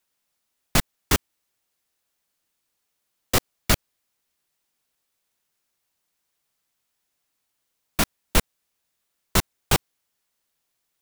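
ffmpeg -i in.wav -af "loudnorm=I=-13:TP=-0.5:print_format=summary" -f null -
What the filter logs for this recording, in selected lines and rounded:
Input Integrated:    -25.1 LUFS
Input True Peak:      -3.3 dBTP
Input LRA:             3.6 LU
Input Threshold:     -35.3 LUFS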